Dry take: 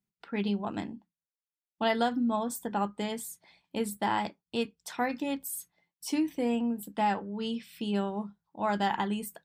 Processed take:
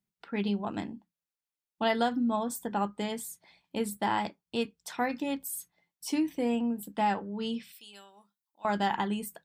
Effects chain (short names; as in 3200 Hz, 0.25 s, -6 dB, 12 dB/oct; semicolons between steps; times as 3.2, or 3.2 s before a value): 7.72–8.65 differentiator